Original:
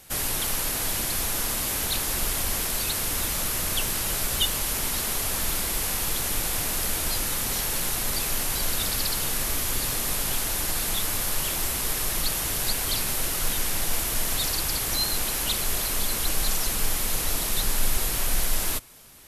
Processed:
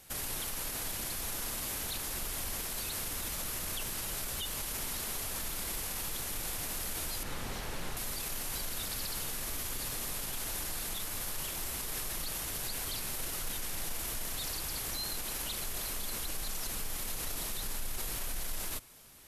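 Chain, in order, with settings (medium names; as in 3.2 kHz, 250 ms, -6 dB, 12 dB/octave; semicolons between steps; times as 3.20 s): 7.23–7.97 s: low-pass 2.1 kHz 6 dB/octave; peak limiter -21.5 dBFS, peak gain reduction 11.5 dB; trim -6 dB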